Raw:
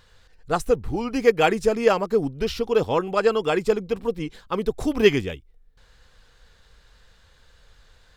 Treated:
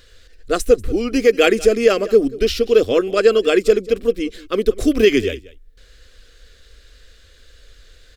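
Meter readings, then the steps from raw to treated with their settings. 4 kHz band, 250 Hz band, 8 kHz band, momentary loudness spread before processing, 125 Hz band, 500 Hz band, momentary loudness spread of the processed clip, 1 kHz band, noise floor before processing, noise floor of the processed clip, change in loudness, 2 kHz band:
+7.0 dB, +6.0 dB, +8.5 dB, 8 LU, −1.0 dB, +6.5 dB, 9 LU, −2.0 dB, −57 dBFS, −50 dBFS, +6.0 dB, +5.0 dB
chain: phaser with its sweep stopped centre 370 Hz, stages 4
single-tap delay 188 ms −20 dB
boost into a limiter +10 dB
level −1 dB

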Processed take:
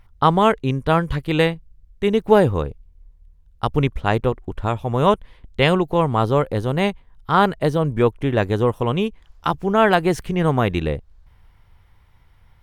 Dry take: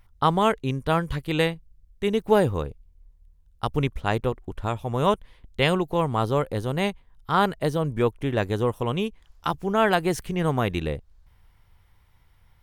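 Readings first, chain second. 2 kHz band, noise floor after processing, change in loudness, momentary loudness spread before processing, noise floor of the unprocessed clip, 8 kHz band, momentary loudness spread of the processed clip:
+4.5 dB, −53 dBFS, +5.5 dB, 10 LU, −59 dBFS, can't be measured, 10 LU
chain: high-shelf EQ 5,000 Hz −8 dB
level +5.5 dB

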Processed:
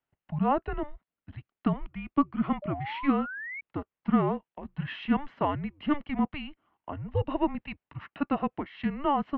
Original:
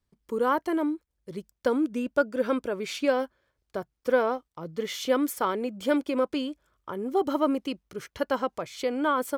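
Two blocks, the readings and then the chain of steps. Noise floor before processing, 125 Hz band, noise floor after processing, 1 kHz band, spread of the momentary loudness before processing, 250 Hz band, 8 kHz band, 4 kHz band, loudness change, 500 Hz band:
−80 dBFS, +13.5 dB, below −85 dBFS, −1.0 dB, 13 LU, 0.0 dB, below −35 dB, −7.0 dB, −2.5 dB, −8.5 dB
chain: single-sideband voice off tune −290 Hz 410–3,200 Hz
sound drawn into the spectrogram rise, 0:02.62–0:03.61, 580–2,300 Hz −38 dBFS

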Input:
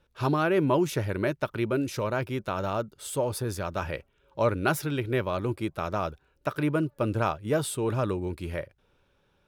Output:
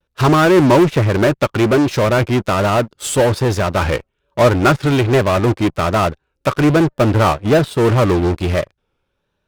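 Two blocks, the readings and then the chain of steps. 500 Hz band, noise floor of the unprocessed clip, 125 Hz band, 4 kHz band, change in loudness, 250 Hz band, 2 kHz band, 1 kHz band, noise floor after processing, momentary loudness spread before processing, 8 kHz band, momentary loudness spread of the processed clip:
+13.5 dB, −69 dBFS, +14.5 dB, +15.0 dB, +14.0 dB, +14.0 dB, +13.0 dB, +13.5 dB, −72 dBFS, 10 LU, +11.0 dB, 8 LU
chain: pitch vibrato 1.2 Hz 78 cents
treble cut that deepens with the level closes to 2,200 Hz, closed at −22 dBFS
in parallel at −8.5 dB: fuzz pedal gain 37 dB, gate −46 dBFS
on the sum: expander for the loud parts 1.5 to 1, over −38 dBFS
level +8 dB

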